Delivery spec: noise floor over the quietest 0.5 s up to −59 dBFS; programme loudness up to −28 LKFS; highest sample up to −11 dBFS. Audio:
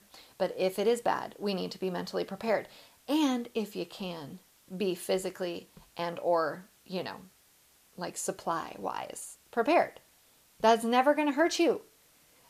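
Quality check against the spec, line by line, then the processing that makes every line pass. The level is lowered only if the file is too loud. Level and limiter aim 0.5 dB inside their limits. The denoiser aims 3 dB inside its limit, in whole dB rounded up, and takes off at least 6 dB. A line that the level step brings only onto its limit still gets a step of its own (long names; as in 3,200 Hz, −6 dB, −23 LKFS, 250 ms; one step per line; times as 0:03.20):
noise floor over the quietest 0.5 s −64 dBFS: in spec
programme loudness −31.0 LKFS: in spec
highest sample −11.5 dBFS: in spec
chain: no processing needed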